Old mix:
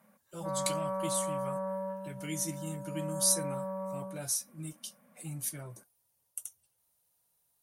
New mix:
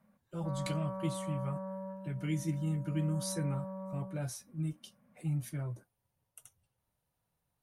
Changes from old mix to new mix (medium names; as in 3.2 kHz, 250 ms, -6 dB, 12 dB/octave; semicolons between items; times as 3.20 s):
background -7.5 dB; master: add tone controls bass +9 dB, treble -15 dB